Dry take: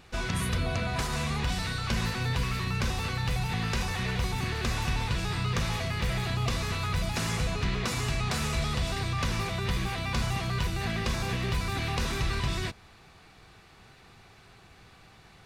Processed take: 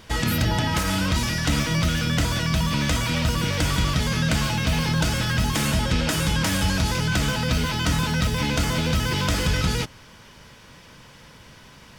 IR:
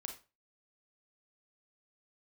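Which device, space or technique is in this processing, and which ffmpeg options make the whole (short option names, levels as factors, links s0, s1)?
nightcore: -af "asetrate=56889,aresample=44100,volume=2.24"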